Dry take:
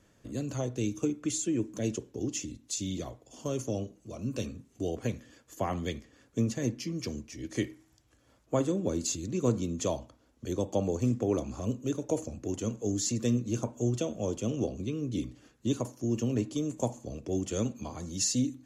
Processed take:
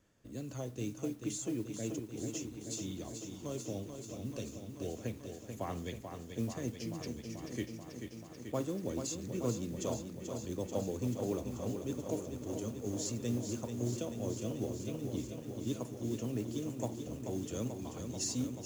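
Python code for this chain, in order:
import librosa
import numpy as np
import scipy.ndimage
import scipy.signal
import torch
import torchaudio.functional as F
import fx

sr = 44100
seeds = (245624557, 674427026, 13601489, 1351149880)

y = fx.mod_noise(x, sr, seeds[0], snr_db=24)
y = fx.echo_crushed(y, sr, ms=436, feedback_pct=80, bits=9, wet_db=-7.0)
y = y * 10.0 ** (-8.0 / 20.0)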